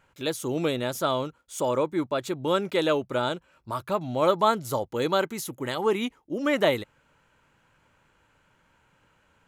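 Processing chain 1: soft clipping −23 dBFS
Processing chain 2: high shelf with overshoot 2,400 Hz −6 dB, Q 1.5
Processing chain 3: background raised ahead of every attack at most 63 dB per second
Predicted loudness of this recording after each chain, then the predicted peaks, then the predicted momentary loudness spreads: −30.5, −27.0, −26.0 LKFS; −23.0, −8.0, −6.0 dBFS; 6, 9, 8 LU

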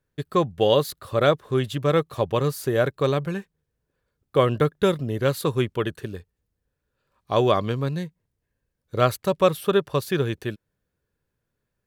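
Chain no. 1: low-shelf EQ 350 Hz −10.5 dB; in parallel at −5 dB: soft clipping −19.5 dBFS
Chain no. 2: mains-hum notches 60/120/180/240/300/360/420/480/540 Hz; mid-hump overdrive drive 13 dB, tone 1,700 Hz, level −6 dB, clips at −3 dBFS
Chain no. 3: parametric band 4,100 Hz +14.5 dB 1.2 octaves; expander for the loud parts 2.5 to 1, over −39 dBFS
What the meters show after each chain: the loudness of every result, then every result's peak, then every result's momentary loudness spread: −24.0, −22.0, −27.0 LKFS; −4.0, −4.5, −1.5 dBFS; 12, 13, 15 LU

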